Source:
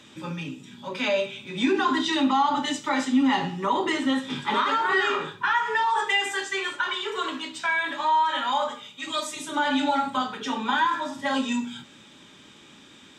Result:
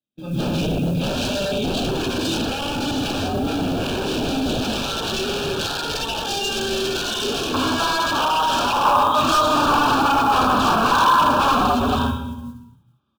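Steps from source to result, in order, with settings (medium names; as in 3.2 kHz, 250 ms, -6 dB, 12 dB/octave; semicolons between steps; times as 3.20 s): AM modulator 160 Hz, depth 25%; gate -41 dBFS, range -44 dB; doubling 31 ms -8 dB; reverberation RT60 1.1 s, pre-delay 145 ms, DRR -14.5 dB; compression 10:1, threshold -13 dBFS, peak gain reduction 15.5 dB; low-pass 3.6 kHz; bass shelf 310 Hz +6 dB; wavefolder -15.5 dBFS; peaking EQ 1.1 kHz -14 dB 0.74 oct, from 7.54 s +2.5 dB, from 8.85 s +10 dB; modulation noise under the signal 27 dB; Butterworth band-stop 2 kHz, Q 2.2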